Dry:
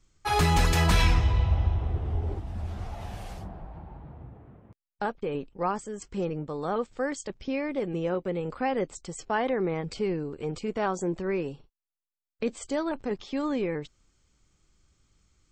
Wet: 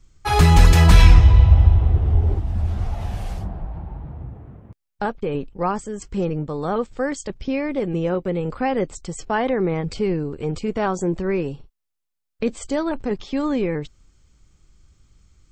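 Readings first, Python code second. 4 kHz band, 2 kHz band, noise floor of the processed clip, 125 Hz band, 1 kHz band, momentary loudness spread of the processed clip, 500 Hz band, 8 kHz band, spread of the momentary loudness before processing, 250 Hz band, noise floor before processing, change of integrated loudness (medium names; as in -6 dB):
+5.0 dB, +5.0 dB, -78 dBFS, +11.5 dB, +5.5 dB, 18 LU, +6.0 dB, +5.0 dB, 17 LU, +7.5 dB, under -85 dBFS, +9.0 dB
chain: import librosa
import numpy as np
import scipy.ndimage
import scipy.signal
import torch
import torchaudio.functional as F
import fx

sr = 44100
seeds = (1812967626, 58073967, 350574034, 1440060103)

y = fx.low_shelf(x, sr, hz=150.0, db=9.0)
y = y * librosa.db_to_amplitude(5.0)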